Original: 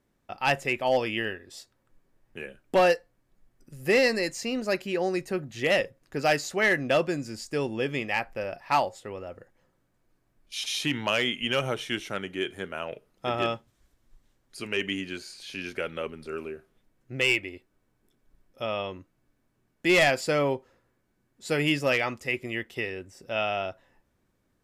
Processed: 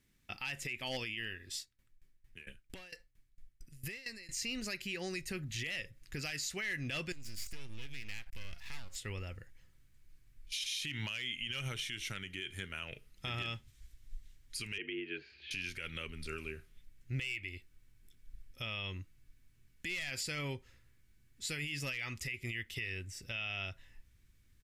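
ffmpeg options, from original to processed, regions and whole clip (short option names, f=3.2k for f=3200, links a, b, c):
-filter_complex "[0:a]asettb=1/sr,asplit=3[a][b][c];[a]atrim=end=1.564[d];[b]atrim=start=1.56:end=4.37,asetpts=PTS-STARTPTS,afade=t=in:d=0.004:c=qsin,afade=t=out:st=2.806:d=0.004:c=qsin,acompressor=threshold=-33dB:ratio=10:attack=3.2:release=140:knee=1:detection=peak,aeval=exprs='val(0)*pow(10,-19*if(lt(mod(4.4*n/s,1),2*abs(4.4)/1000),1-mod(4.4*n/s,1)/(2*abs(4.4)/1000),(mod(4.4*n/s,1)-2*abs(4.4)/1000)/(1-2*abs(4.4)/1000))/20)':c=same[e];[c]atrim=start=4.366[f];[d][e]acrossfade=d=0.004:c1=hsin:c2=qsin[g];[g][f]acrossfade=d=0.004:c1=qsin:c2=hsin,asettb=1/sr,asplit=3[h][i][j];[h]atrim=end=7.124[k];[i]atrim=start=7.12:end=8.96,asetpts=PTS-STARTPTS,afade=t=in:d=0.004:c=qsin,afade=t=out:st=1.836:d=0.004:c=qsin,highshelf=f=8k:g=5,acompressor=threshold=-40dB:ratio=8:attack=3.2:release=140:knee=1:detection=peak,aeval=exprs='max(val(0),0)':c=same[l];[j]atrim=start=8.956[m];[k][l]acrossfade=d=0.004:c1=hsin:c2=qsin[n];[n][m]acrossfade=d=0.004:c1=qsin:c2=hsin,asettb=1/sr,asplit=3[o][p][q];[o]atrim=end=14.784[r];[p]atrim=start=14.78:end=15.51,asetpts=PTS-STARTPTS,afade=t=in:d=0.004:c=qsin,afade=t=out:st=0.726:d=0.004:c=qsin,afreqshift=59,highpass=120,equalizer=f=150:t=q:w=4:g=-3,equalizer=f=220:t=q:w=4:g=-7,equalizer=f=360:t=q:w=4:g=10,equalizer=f=520:t=q:w=4:g=-4,equalizer=f=1.1k:t=q:w=4:g=-8,equalizer=f=2k:t=q:w=4:g=-5,lowpass=f=2.4k:w=0.5412,lowpass=f=2.4k:w=1.3066[s];[q]atrim=start=15.506[t];[r][s]acrossfade=d=0.004:c1=hsin:c2=qsin[u];[u][t]acrossfade=d=0.004:c1=qsin:c2=hsin,firequalizer=gain_entry='entry(100,0);entry(610,-16);entry(2100,4)':delay=0.05:min_phase=1,alimiter=level_in=5.5dB:limit=-24dB:level=0:latency=1:release=176,volume=-5.5dB,asubboost=boost=3.5:cutoff=100,volume=1dB"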